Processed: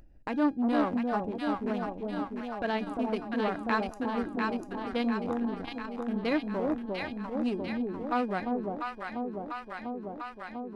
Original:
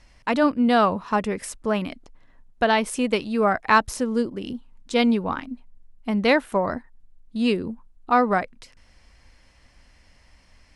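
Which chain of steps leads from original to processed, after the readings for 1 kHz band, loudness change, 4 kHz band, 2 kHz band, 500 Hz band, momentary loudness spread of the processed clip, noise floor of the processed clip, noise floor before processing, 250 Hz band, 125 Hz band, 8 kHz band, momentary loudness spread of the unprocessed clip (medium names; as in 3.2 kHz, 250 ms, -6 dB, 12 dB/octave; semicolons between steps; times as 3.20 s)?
-9.5 dB, -9.5 dB, -11.5 dB, -10.0 dB, -8.5 dB, 9 LU, -46 dBFS, -57 dBFS, -5.5 dB, -7.0 dB, under -20 dB, 16 LU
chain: local Wiener filter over 41 samples; gate -48 dBFS, range -25 dB; peaking EQ 310 Hz +8 dB 0.48 oct; feedback comb 820 Hz, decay 0.25 s, mix 70%; echo whose repeats swap between lows and highs 348 ms, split 830 Hz, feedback 76%, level -2 dB; upward compressor, threshold -30 dBFS; transformer saturation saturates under 560 Hz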